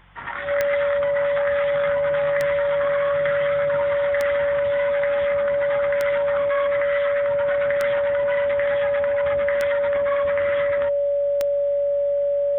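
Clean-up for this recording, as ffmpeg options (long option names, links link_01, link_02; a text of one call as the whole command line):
ffmpeg -i in.wav -af "adeclick=threshold=4,bandreject=frequency=46.2:width_type=h:width=4,bandreject=frequency=92.4:width_type=h:width=4,bandreject=frequency=138.6:width_type=h:width=4,bandreject=frequency=184.8:width_type=h:width=4,bandreject=frequency=570:width=30,agate=range=-21dB:threshold=-13dB" out.wav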